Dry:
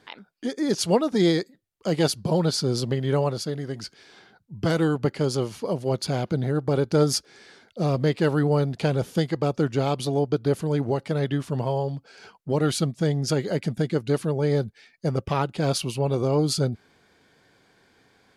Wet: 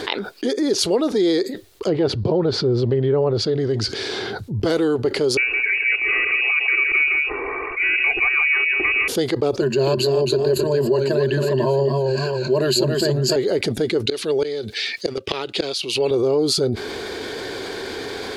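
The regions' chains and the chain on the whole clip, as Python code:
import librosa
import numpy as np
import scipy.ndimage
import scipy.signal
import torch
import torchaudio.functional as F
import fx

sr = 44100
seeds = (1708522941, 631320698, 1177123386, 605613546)

y = fx.chain(x, sr, fx.env_lowpass_down(base_hz=1800.0, full_db=-19.5),
    fx.peak_eq(hz=110.0, db=10.5, octaves=1.4), at=(1.87, 4.6))
y = fx.chain(y, sr, fx.freq_invert(carrier_hz=2700),
    fx.comb(ms=2.6, depth=0.81),
    fx.echo_single(ms=163, db=-7.0), at=(5.37, 9.08))
y = fx.chain(y, sr, fx.ripple_eq(per_octave=1.4, db=18),
    fx.echo_warbled(ms=271, feedback_pct=31, rate_hz=2.8, cents=85, wet_db=-7), at=(9.6, 13.36))
y = fx.chain(y, sr, fx.weighting(curve='D'),
    fx.gate_flip(shuts_db=-14.0, range_db=-26), at=(14.07, 16.11))
y = fx.graphic_eq_15(y, sr, hz=(160, 400, 4000), db=(-10, 11, 6))
y = fx.env_flatten(y, sr, amount_pct=70)
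y = y * 10.0 ** (-7.0 / 20.0)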